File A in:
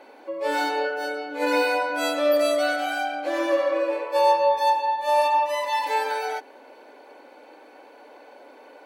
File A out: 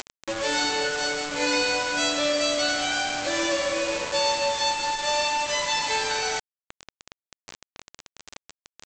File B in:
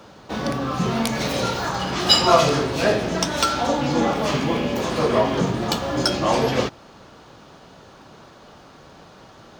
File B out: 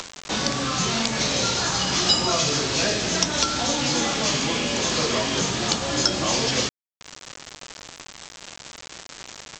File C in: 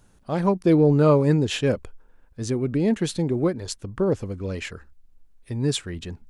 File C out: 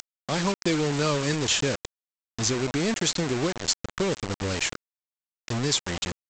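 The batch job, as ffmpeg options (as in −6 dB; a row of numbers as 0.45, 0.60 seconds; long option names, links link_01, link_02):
-filter_complex "[0:a]acompressor=mode=upward:threshold=-33dB:ratio=2.5,crystalizer=i=5.5:c=0,acrossover=split=410|1500|4900[link_01][link_02][link_03][link_04];[link_01]acompressor=threshold=-27dB:ratio=4[link_05];[link_02]acompressor=threshold=-31dB:ratio=4[link_06];[link_03]acompressor=threshold=-28dB:ratio=4[link_07];[link_04]acompressor=threshold=-25dB:ratio=4[link_08];[link_05][link_06][link_07][link_08]amix=inputs=4:normalize=0,aresample=16000,acrusher=bits=4:mix=0:aa=0.000001,aresample=44100"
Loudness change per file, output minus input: −1.0, −1.0, −3.5 LU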